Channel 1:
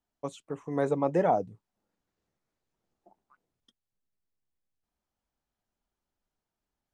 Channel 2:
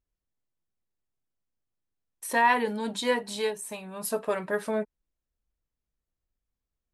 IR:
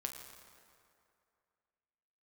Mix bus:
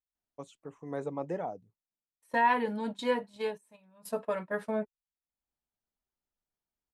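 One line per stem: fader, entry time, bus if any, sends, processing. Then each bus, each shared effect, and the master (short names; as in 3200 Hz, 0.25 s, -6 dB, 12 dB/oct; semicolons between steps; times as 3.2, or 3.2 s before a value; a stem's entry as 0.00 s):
-8.5 dB, 0.15 s, no send, auto duck -21 dB, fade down 0.95 s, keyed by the second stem
-2.0 dB, 0.00 s, no send, gate -33 dBFS, range -18 dB; high shelf 3700 Hz -10 dB; notch comb 390 Hz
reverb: off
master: dry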